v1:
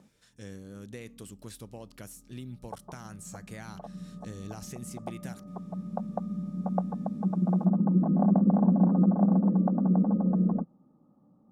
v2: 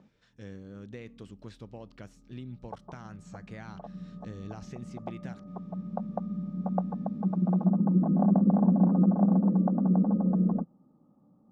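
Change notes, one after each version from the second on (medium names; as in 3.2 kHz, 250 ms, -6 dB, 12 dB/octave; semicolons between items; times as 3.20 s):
master: add distance through air 170 m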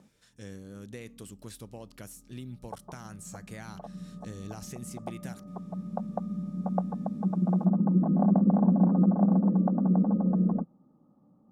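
master: remove distance through air 170 m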